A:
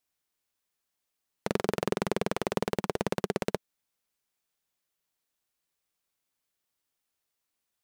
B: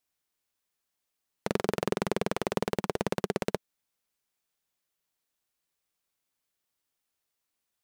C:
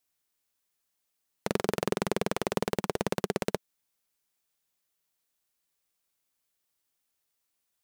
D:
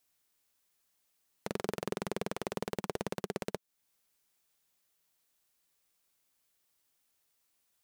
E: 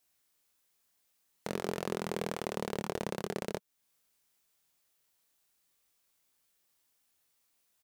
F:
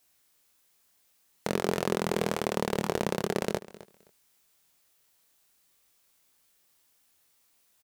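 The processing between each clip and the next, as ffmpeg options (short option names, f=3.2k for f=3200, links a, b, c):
-af anull
-af "highshelf=f=5.5k:g=4.5"
-af "alimiter=limit=-20.5dB:level=0:latency=1:release=366,volume=3.5dB"
-filter_complex "[0:a]asplit=2[a][b];[b]adelay=24,volume=-4.5dB[c];[a][c]amix=inputs=2:normalize=0"
-af "aecho=1:1:261|522:0.126|0.0227,volume=7dB"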